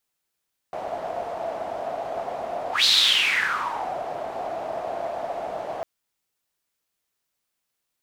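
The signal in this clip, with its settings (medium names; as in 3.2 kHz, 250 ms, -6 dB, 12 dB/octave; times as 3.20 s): whoosh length 5.10 s, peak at 2.12 s, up 0.15 s, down 1.20 s, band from 680 Hz, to 4 kHz, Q 6.8, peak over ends 13 dB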